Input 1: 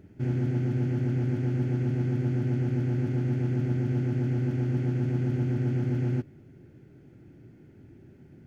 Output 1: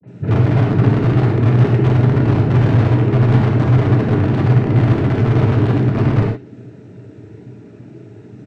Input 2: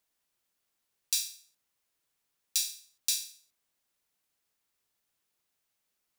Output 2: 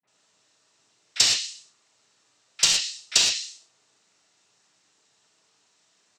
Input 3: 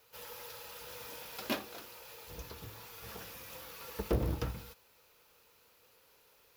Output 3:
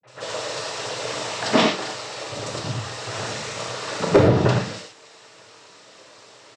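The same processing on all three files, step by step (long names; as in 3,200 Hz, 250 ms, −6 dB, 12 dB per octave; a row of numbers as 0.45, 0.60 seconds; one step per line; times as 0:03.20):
three-band delay without the direct sound lows, mids, highs 30/70 ms, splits 180/2,100 Hz
cochlear-implant simulation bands 12
in parallel at −6 dB: wrap-around overflow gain 23.5 dB
on the sum: treble cut that deepens with the level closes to 2,400 Hz, closed at −24.5 dBFS
reverb whose tail is shaped and stops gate 140 ms flat, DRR −0.5 dB
normalise the peak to −2 dBFS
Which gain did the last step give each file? +9.5, +13.5, +15.0 decibels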